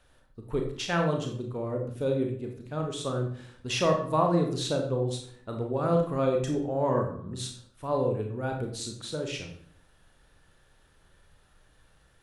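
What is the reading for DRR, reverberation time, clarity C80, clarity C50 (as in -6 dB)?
2.0 dB, 0.60 s, 10.0 dB, 6.0 dB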